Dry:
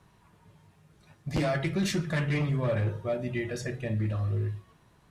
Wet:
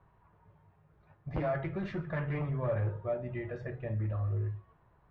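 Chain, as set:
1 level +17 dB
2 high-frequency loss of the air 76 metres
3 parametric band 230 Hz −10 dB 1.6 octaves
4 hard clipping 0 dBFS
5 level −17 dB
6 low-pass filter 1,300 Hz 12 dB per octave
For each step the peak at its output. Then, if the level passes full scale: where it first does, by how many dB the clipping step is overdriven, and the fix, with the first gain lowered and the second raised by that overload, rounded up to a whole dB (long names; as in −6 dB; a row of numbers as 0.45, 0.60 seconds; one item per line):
−4.0, −4.5, −3.0, −3.0, −20.0, −23.0 dBFS
no step passes full scale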